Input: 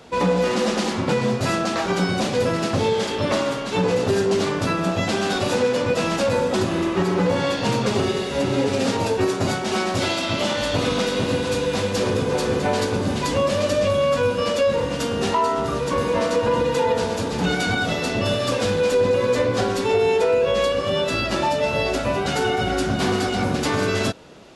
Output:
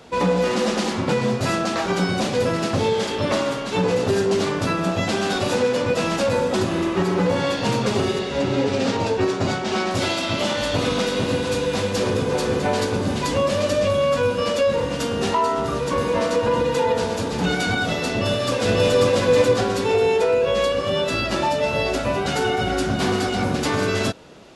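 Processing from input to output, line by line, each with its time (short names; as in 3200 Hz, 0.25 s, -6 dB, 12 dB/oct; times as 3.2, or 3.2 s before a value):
8.19–9.91 LPF 6400 Hz
18.11–18.99 echo throw 0.54 s, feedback 25%, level -0.5 dB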